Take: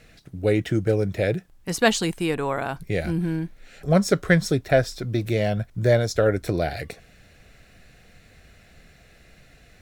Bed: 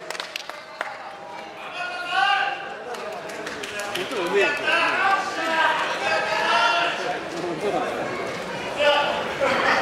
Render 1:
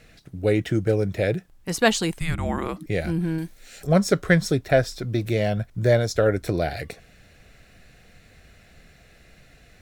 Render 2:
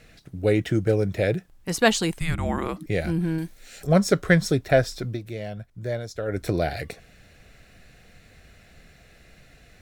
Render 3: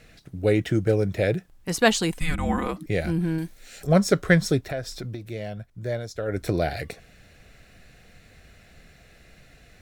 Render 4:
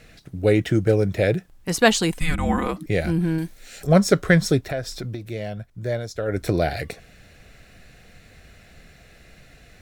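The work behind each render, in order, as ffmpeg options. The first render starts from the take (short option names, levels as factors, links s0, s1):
-filter_complex "[0:a]asettb=1/sr,asplit=3[s0][s1][s2];[s0]atrim=end=2.194[s3];[s1]atrim=start=2.19:end=2.86,asetpts=PTS-STARTPTS,afade=t=in:d=0.004:c=qsin,afade=t=out:st=0.666:d=0.004:c=qsin,afreqshift=-330[s4];[s2]atrim=start=2.856[s5];[s3][s4]acrossfade=d=0.004:c1=hsin:c2=qsin[s6];[s6][s5]acrossfade=d=0.004:c1=qsin:c2=hsin,asettb=1/sr,asplit=3[s7][s8][s9];[s7]atrim=end=3.384[s10];[s8]atrim=start=3.38:end=3.87,asetpts=PTS-STARTPTS,afade=t=in:d=0.004:c=qsin,afade=t=out:st=0.486:d=0.004:c=qsin,bass=f=250:g=-3,treble=f=4000:g=13[s11];[s9]atrim=start=3.866[s12];[s10][s11]acrossfade=d=0.004:c1=hsin:c2=qsin[s13];[s13][s12]acrossfade=d=0.004:c1=qsin:c2=hsin"
-filter_complex "[0:a]asplit=3[s0][s1][s2];[s0]atrim=end=5.19,asetpts=PTS-STARTPTS,afade=t=out:st=5.06:d=0.13:silence=0.298538[s3];[s1]atrim=start=5.19:end=6.27,asetpts=PTS-STARTPTS,volume=0.299[s4];[s2]atrim=start=6.27,asetpts=PTS-STARTPTS,afade=t=in:d=0.13:silence=0.298538[s5];[s3][s4][s5]concat=n=3:v=0:a=1"
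-filter_complex "[0:a]asettb=1/sr,asplit=3[s0][s1][s2];[s0]atrim=end=2.124[s3];[s1]atrim=start=2.12:end=2.71,asetpts=PTS-STARTPTS,afade=t=in:d=0.004:c=qsin,afade=t=out:st=0.586:d=0.004:c=qsin,aecho=1:1:4:0.65,atrim=end_sample=26019[s4];[s2]atrim=start=2.706[s5];[s3][s4]acrossfade=d=0.004:c1=hsin:c2=qsin[s6];[s6][s5]acrossfade=d=0.004:c1=qsin:c2=hsin,asplit=3[s7][s8][s9];[s7]afade=t=out:st=4.6:d=0.02[s10];[s8]acompressor=threshold=0.0316:ratio=3:attack=3.2:release=140:knee=1:detection=peak,afade=t=in:st=4.6:d=0.02,afade=t=out:st=5.24:d=0.02[s11];[s9]afade=t=in:st=5.24:d=0.02[s12];[s10][s11][s12]amix=inputs=3:normalize=0"
-af "volume=1.41,alimiter=limit=0.708:level=0:latency=1"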